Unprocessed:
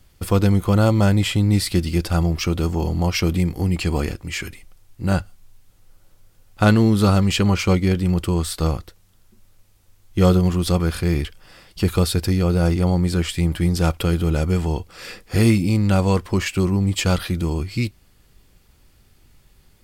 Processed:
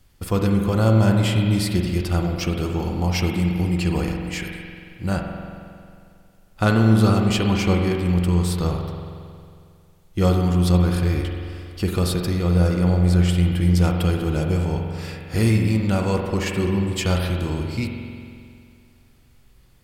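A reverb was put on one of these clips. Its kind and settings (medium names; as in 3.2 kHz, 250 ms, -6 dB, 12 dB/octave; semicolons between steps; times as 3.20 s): spring tank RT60 2.3 s, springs 45 ms, chirp 65 ms, DRR 2 dB; trim -3.5 dB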